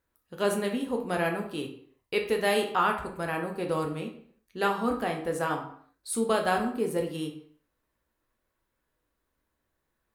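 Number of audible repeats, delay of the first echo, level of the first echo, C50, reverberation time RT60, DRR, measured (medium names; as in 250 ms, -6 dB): no echo, no echo, no echo, 8.0 dB, 0.60 s, 2.0 dB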